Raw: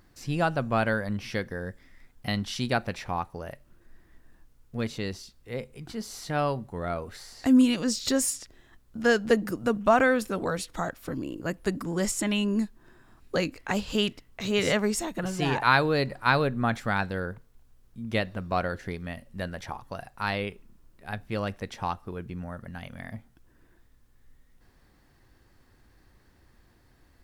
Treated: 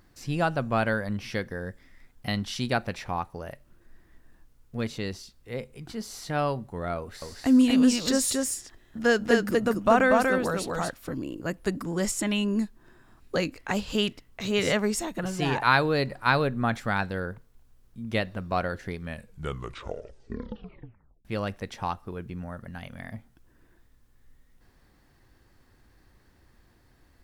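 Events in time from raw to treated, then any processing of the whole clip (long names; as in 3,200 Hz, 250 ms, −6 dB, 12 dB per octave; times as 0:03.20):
0:06.98–0:10.97: single-tap delay 239 ms −3 dB
0:18.97: tape stop 2.28 s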